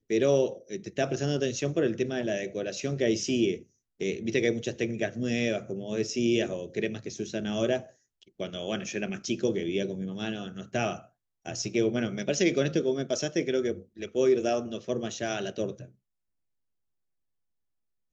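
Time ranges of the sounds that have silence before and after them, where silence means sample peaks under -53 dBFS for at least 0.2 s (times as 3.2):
4–7.93
8.22–11.07
11.45–15.92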